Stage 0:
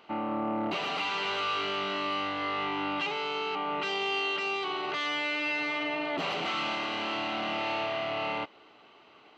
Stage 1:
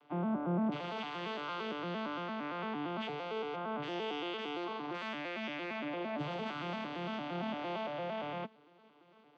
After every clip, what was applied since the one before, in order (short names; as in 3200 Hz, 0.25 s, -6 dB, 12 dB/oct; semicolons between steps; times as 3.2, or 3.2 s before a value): arpeggiated vocoder minor triad, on D3, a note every 0.114 s; gain -6 dB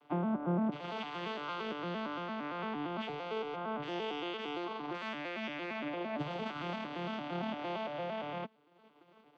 transient shaper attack +5 dB, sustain -6 dB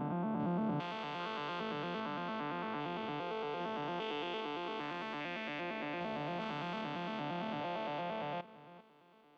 stepped spectrum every 0.4 s; gain +1.5 dB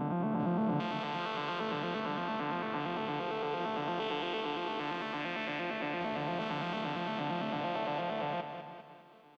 feedback echo 0.202 s, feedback 45%, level -8.5 dB; gain +3.5 dB